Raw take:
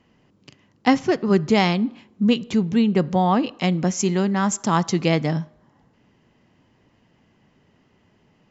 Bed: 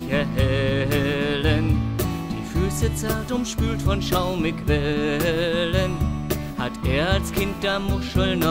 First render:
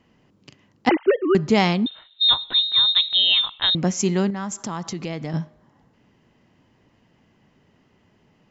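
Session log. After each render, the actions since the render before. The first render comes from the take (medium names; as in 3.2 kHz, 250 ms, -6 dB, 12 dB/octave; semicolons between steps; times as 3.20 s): 0.89–1.35 s: formants replaced by sine waves; 1.86–3.75 s: frequency inversion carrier 3.9 kHz; 4.30–5.34 s: compression 4:1, threshold -27 dBFS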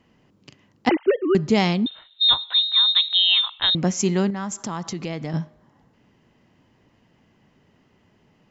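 0.88–1.86 s: peaking EQ 1.2 kHz -4 dB 2 oct; 2.42–3.60 s: high-pass 730 Hz 24 dB/octave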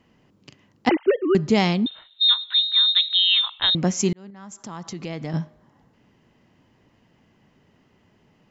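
2.27–3.41 s: Chebyshev band-pass 1.5–5 kHz; 4.13–5.37 s: fade in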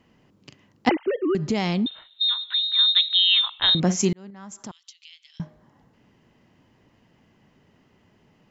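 0.91–2.79 s: compression 5:1, threshold -19 dBFS; 3.54–4.05 s: doubling 49 ms -11 dB; 4.71–5.40 s: ladder high-pass 2.8 kHz, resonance 60%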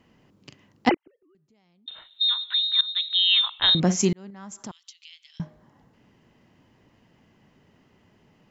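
0.94–1.88 s: inverted gate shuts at -23 dBFS, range -40 dB; 2.81–3.55 s: fade in equal-power, from -20.5 dB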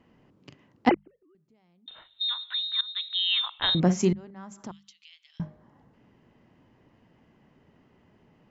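treble shelf 3.2 kHz -11.5 dB; hum notches 50/100/150/200 Hz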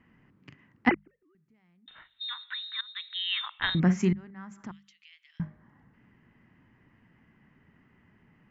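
FFT filter 210 Hz 0 dB, 570 Hz -10 dB, 1.9 kHz +6 dB, 3.8 kHz -9 dB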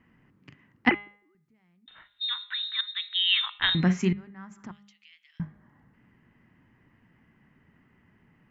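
de-hum 204.2 Hz, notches 20; dynamic bell 3.1 kHz, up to +8 dB, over -46 dBFS, Q 1.1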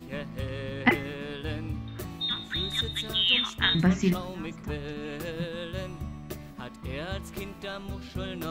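add bed -14 dB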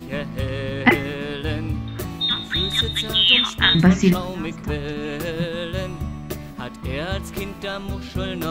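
trim +8.5 dB; peak limiter -1 dBFS, peak gain reduction 2 dB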